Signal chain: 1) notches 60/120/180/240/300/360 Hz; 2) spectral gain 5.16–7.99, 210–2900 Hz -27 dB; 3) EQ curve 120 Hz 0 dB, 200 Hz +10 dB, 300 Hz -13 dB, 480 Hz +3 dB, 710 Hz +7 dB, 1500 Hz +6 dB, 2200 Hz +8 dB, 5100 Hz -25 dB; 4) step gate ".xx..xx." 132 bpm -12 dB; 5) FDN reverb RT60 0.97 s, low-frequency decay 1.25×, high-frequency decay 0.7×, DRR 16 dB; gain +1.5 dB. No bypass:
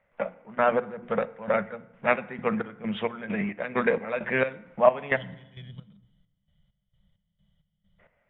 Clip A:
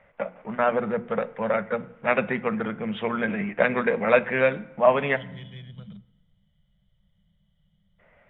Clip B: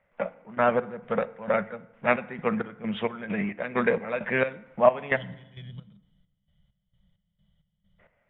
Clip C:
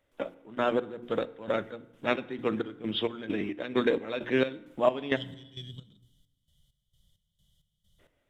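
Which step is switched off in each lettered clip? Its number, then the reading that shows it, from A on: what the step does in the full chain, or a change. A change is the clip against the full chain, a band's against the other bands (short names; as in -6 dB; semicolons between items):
4, crest factor change -2.0 dB; 1, momentary loudness spread change +3 LU; 3, 250 Hz band +5.0 dB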